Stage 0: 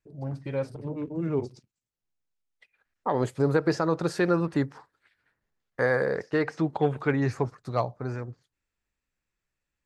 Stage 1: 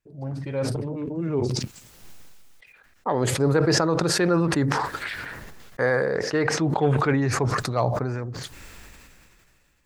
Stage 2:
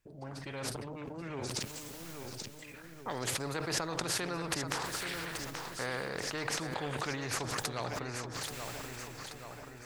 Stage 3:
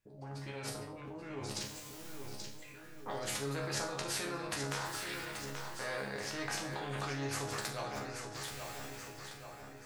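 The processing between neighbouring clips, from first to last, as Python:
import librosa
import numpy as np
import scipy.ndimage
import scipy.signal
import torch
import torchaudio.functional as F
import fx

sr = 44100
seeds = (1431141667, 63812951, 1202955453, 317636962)

y1 = fx.sustainer(x, sr, db_per_s=23.0)
y1 = y1 * 10.0 ** (1.5 / 20.0)
y2 = fx.echo_feedback(y1, sr, ms=831, feedback_pct=37, wet_db=-12.5)
y2 = fx.spectral_comp(y2, sr, ratio=2.0)
y2 = y2 * 10.0 ** (-8.0 / 20.0)
y3 = fx.resonator_bank(y2, sr, root=37, chord='fifth', decay_s=0.42)
y3 = y3 * 10.0 ** (9.0 / 20.0)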